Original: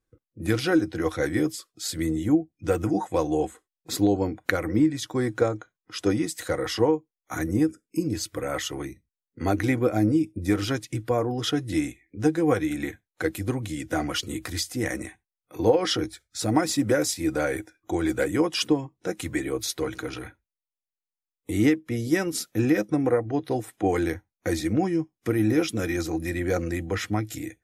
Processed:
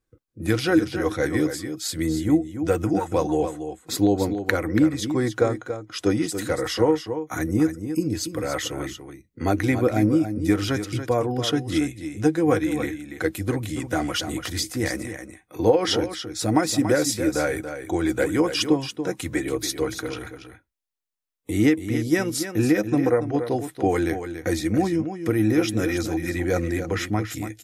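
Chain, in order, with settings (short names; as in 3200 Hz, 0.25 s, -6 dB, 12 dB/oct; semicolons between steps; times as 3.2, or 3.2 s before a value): echo 0.283 s -9.5 dB; gain +2 dB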